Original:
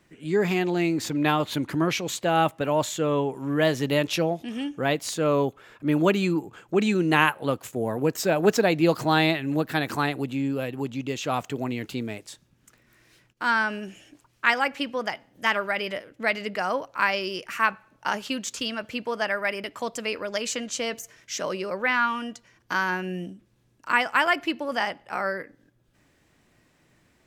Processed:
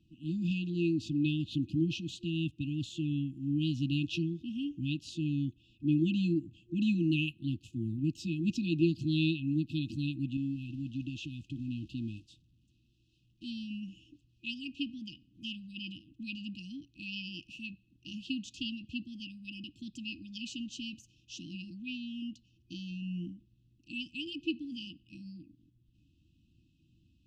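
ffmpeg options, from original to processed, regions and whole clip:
-filter_complex "[0:a]asettb=1/sr,asplit=3[s0][s1][s2];[s0]atrim=end=10.374[s3];[s1]atrim=start=10.37:end=13.44,asetpts=PTS-STARTPTS,afade=t=in:d=0.004:c=qsin,afade=t=out:st=3.066:d=0.004:c=qsin,aeval=exprs='val(0)+0.5*0.0126*sgn(val(0))':c=same,acompressor=threshold=0.0398:ratio=2.5:attack=3.2:release=140:knee=1:detection=peak,agate=range=0.0224:threshold=0.0251:ratio=3:release=100:detection=peak[s4];[s2]atrim=start=13.436[s5];[s3][s4]acrossfade=d=0.004:c1=hsin:c2=qsin[s6];[s6][s5]acrossfade=d=0.004:c1=qsin:c2=hsin,lowpass=3400,afftfilt=real='re*(1-between(b*sr/4096,350,2500))':imag='im*(1-between(b*sr/4096,350,2500))':win_size=4096:overlap=0.75,equalizer=f=71:t=o:w=1.7:g=9.5,volume=0.501"

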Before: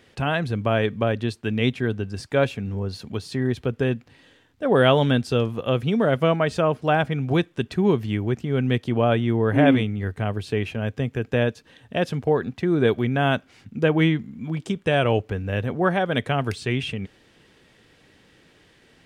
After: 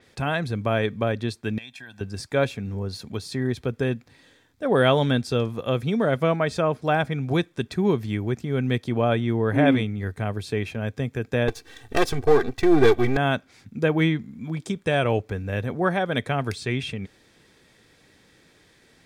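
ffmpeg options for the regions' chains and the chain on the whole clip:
-filter_complex "[0:a]asettb=1/sr,asplit=3[s0][s1][s2];[s0]atrim=end=1.584[s3];[s1]atrim=start=1.58:end=2.01,asetpts=PTS-STARTPTS,afade=t=in:d=0.004:c=qsin,afade=t=out:st=0.426:d=0.004:c=qsin,highpass=f=1100:p=1,aecho=1:1:1.2:0.83,atrim=end_sample=18963,acompressor=threshold=0.0141:ratio=5:attack=3.2:release=140:knee=1:detection=peak[s4];[s2]atrim=start=2.006[s5];[s3][s4]acrossfade=d=0.004:c1=hsin:c2=qsin[s6];[s6][s5]acrossfade=d=0.004:c1=qsin:c2=hsin,asettb=1/sr,asplit=3[s7][s8][s9];[s7]atrim=end=11.484[s10];[s8]atrim=start=11.48:end=13.17,asetpts=PTS-STARTPTS,afade=t=in:d=0.004:c=qsin,afade=t=out:st=1.686:d=0.004:c=qsin,aeval=exprs='if(lt(val(0),0),0.251*val(0),val(0))':c=same,aecho=1:1:2.6:0.75,atrim=end_sample=74529,acontrast=85[s11];[s9]atrim=start=13.166[s12];[s10][s11]acrossfade=d=0.004:c1=hsin:c2=qsin[s13];[s13][s12]acrossfade=d=0.004:c1=qsin:c2=hsin,highshelf=f=3900:g=6.5,bandreject=f=2900:w=6.2,adynamicequalizer=threshold=0.00794:dfrequency=6300:dqfactor=0.7:tfrequency=6300:tqfactor=0.7:attack=5:release=100:ratio=0.375:range=2:mode=cutabove:tftype=highshelf,volume=0.794"

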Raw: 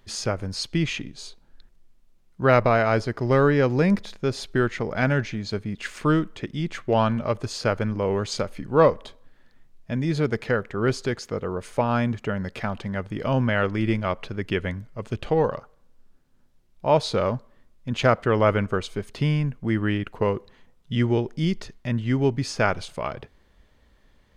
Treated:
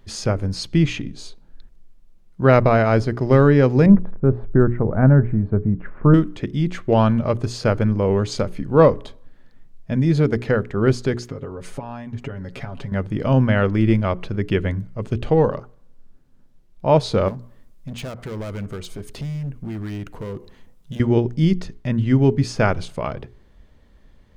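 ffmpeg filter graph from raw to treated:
-filter_complex "[0:a]asettb=1/sr,asplit=3[s0][s1][s2];[s0]atrim=end=3.864[s3];[s1]atrim=start=3.86:end=6.14,asetpts=PTS-STARTPTS,afade=t=in:d=0.004:c=qsin,afade=t=out:st=2.276:d=0.004:c=qsin,lowpass=f=1400:w=0.5412,lowpass=f=1400:w=1.3066,lowshelf=f=130:g=8[s4];[s2]atrim=start=6.136[s5];[s3][s4]acrossfade=d=0.004:c1=hsin:c2=qsin[s6];[s6][s5]acrossfade=d=0.004:c1=qsin:c2=hsin,asettb=1/sr,asplit=3[s7][s8][s9];[s7]atrim=end=11.284[s10];[s8]atrim=start=11.28:end=12.92,asetpts=PTS-STARTPTS,afade=t=in:d=0.004:c=qsin,afade=t=out:st=1.636:d=0.004:c=qsin,acompressor=threshold=0.02:ratio=5:attack=3.2:release=140:knee=1:detection=peak,aecho=1:1:7.3:0.63,atrim=end_sample=72324[s11];[s9]atrim=start=12.916[s12];[s10][s11]acrossfade=d=0.004:c1=hsin:c2=qsin[s13];[s13][s12]acrossfade=d=0.004:c1=qsin:c2=hsin,asettb=1/sr,asplit=3[s14][s15][s16];[s14]atrim=end=17.284[s17];[s15]atrim=start=17.28:end=21,asetpts=PTS-STARTPTS,afade=t=in:d=0.004:c=qsin,afade=t=out:st=3.716:d=0.004:c=qsin,acompressor=threshold=0.0141:ratio=2:attack=3.2:release=140:knee=1:detection=peak,volume=39.8,asoftclip=hard,volume=0.0251,highshelf=f=6500:g=11[s18];[s16]atrim=start=20.996[s19];[s17][s18]acrossfade=d=0.004:c1=hsin:c2=qsin[s20];[s20][s19]acrossfade=d=0.004:c1=qsin:c2=hsin,lowshelf=f=480:g=9,bandreject=f=60:t=h:w=6,bandreject=f=120:t=h:w=6,bandreject=f=180:t=h:w=6,bandreject=f=240:t=h:w=6,bandreject=f=300:t=h:w=6,bandreject=f=360:t=h:w=6,bandreject=f=420:t=h:w=6"

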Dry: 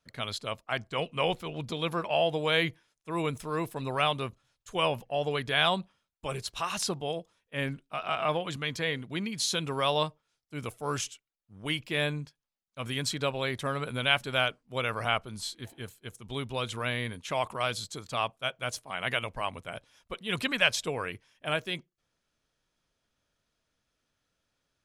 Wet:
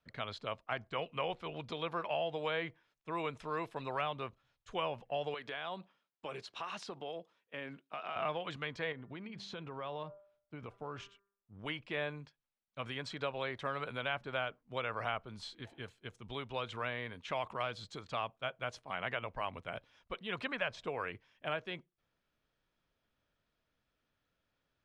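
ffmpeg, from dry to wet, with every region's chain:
-filter_complex "[0:a]asettb=1/sr,asplit=3[s0][s1][s2];[s0]atrim=end=5.344[s3];[s1]atrim=start=5.34:end=8.16,asetpts=PTS-STARTPTS,afade=t=in:d=0.004:c=qsin,afade=t=out:st=2.816:d=0.004:c=qsin,highpass=230,acompressor=threshold=0.0158:ratio=3:attack=3.2:release=140:knee=1:detection=peak[s4];[s2]atrim=start=8.156[s5];[s3][s4]acrossfade=d=0.004:c1=hsin:c2=qsin[s6];[s6][s5]acrossfade=d=0.004:c1=qsin:c2=hsin,asettb=1/sr,asplit=3[s7][s8][s9];[s7]atrim=end=8.924[s10];[s8]atrim=start=8.92:end=11.59,asetpts=PTS-STARTPTS,afade=t=in:d=0.004:c=qsin,afade=t=out:st=2.666:d=0.004:c=qsin,lowpass=f=1400:p=1,bandreject=f=198.6:t=h:w=4,bandreject=f=397.2:t=h:w=4,bandreject=f=595.8:t=h:w=4,bandreject=f=794.4:t=h:w=4,bandreject=f=993:t=h:w=4,bandreject=f=1191.6:t=h:w=4,bandreject=f=1390.2:t=h:w=4,bandreject=f=1588.8:t=h:w=4,bandreject=f=1787.4:t=h:w=4,acompressor=threshold=0.0178:ratio=6:attack=3.2:release=140:knee=1:detection=peak[s11];[s9]atrim=start=11.586[s12];[s10][s11]acrossfade=d=0.004:c1=hsin:c2=qsin[s13];[s13][s12]acrossfade=d=0.004:c1=qsin:c2=hsin,lowpass=3500,acrossover=split=450|1700[s14][s15][s16];[s14]acompressor=threshold=0.00562:ratio=4[s17];[s15]acompressor=threshold=0.0224:ratio=4[s18];[s16]acompressor=threshold=0.00794:ratio=4[s19];[s17][s18][s19]amix=inputs=3:normalize=0,volume=0.794"

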